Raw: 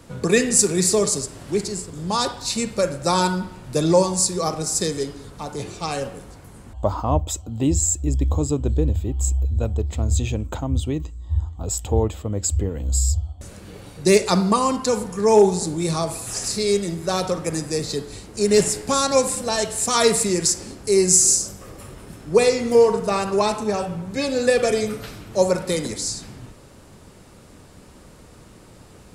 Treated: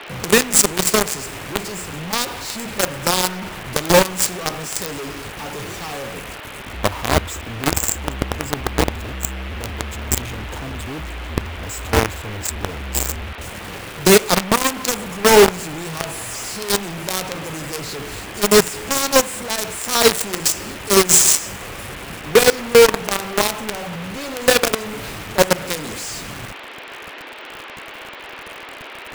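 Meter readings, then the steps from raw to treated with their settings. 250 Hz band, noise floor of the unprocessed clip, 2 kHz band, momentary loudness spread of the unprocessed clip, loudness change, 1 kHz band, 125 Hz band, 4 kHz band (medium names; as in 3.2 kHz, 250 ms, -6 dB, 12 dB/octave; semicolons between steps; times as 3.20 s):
-1.0 dB, -46 dBFS, +9.0 dB, 13 LU, +2.5 dB, +2.5 dB, -3.5 dB, +6.0 dB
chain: companded quantiser 2-bit; band noise 280–3000 Hz -32 dBFS; trim -4 dB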